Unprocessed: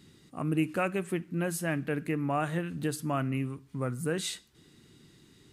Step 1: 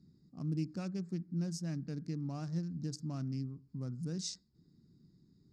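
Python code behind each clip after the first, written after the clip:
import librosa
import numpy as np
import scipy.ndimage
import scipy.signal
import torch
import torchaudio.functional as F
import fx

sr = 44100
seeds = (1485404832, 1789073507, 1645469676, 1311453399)

y = fx.wiener(x, sr, points=15)
y = fx.curve_eq(y, sr, hz=(120.0, 180.0, 480.0, 1900.0, 3200.0, 5400.0, 11000.0), db=(0, 5, -11, -15, -12, 14, -18))
y = F.gain(torch.from_numpy(y), -6.5).numpy()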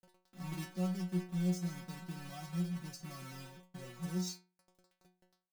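y = fx.quant_companded(x, sr, bits=4)
y = fx.stiff_resonator(y, sr, f0_hz=180.0, decay_s=0.37, stiffness=0.002)
y = F.gain(torch.from_numpy(y), 10.0).numpy()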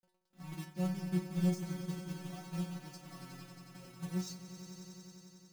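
y = fx.echo_swell(x, sr, ms=91, loudest=5, wet_db=-10.5)
y = fx.upward_expand(y, sr, threshold_db=-53.0, expansion=1.5)
y = F.gain(torch.from_numpy(y), 2.0).numpy()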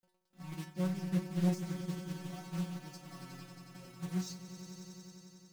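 y = fx.doppler_dist(x, sr, depth_ms=0.47)
y = F.gain(torch.from_numpy(y), 1.0).numpy()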